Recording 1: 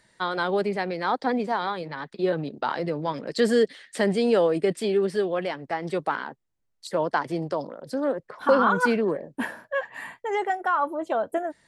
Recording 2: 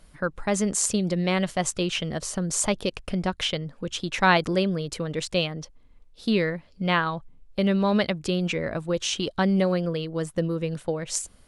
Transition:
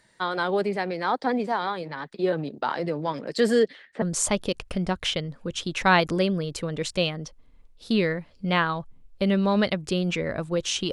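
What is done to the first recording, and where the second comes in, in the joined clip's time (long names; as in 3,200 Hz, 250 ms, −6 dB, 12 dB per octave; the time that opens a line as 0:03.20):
recording 1
0:03.59–0:04.02: low-pass filter 7,300 Hz → 1,200 Hz
0:04.02: continue with recording 2 from 0:02.39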